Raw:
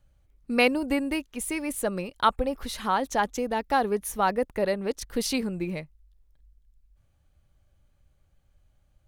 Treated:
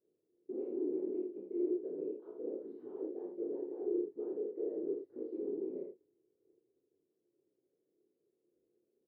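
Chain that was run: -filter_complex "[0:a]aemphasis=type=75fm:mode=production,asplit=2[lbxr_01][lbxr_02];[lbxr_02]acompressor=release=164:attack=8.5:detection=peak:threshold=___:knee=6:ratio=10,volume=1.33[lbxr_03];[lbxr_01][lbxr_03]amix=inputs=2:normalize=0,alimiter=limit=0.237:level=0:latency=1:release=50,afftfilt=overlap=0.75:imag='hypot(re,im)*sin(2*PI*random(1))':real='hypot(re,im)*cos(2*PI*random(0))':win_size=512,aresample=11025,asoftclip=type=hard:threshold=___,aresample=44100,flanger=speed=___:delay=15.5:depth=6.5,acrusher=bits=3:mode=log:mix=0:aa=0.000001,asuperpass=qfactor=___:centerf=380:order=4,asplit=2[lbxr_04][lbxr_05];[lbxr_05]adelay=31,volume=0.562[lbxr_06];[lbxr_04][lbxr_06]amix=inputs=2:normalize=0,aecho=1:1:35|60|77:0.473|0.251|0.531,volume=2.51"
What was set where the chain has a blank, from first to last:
0.0316, 0.0224, 2.1, 3.9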